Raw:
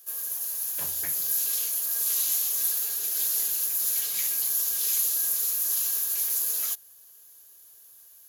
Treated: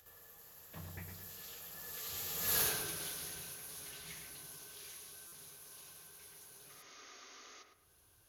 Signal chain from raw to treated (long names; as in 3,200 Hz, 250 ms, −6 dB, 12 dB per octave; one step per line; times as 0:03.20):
source passing by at 0:02.60, 21 m/s, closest 1.7 metres
healed spectral selection 0:06.78–0:07.60, 220–6,800 Hz before
in parallel at +2 dB: downward compressor, threshold −52 dBFS, peak gain reduction 24 dB
on the sum: bass and treble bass +14 dB, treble −7 dB
upward compression, threshold −56 dBFS
high-shelf EQ 6,000 Hz −10 dB
feedback echo with a low-pass in the loop 109 ms, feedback 40%, low-pass 2,200 Hz, level −5 dB
buffer that repeats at 0:05.27, samples 256, times 8
level +10 dB